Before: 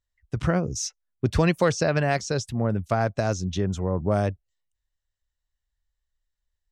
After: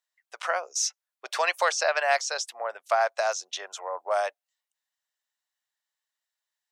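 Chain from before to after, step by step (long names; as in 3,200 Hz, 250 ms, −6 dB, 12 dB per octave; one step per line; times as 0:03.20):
Butterworth high-pass 630 Hz 36 dB per octave
level +3.5 dB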